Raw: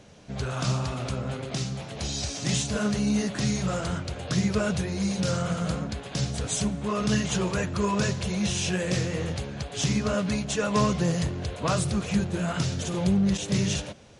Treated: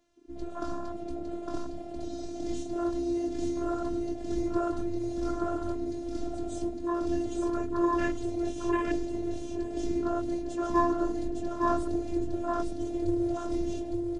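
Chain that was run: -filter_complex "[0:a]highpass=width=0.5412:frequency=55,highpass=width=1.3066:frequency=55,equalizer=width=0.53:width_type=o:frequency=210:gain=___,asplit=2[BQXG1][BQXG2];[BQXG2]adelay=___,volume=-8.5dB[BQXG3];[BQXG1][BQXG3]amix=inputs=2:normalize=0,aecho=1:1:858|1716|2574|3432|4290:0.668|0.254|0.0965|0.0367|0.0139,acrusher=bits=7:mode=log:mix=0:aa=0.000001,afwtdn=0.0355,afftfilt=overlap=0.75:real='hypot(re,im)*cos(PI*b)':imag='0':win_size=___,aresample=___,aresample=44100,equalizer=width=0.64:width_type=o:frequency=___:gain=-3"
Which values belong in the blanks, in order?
10, 22, 512, 22050, 2600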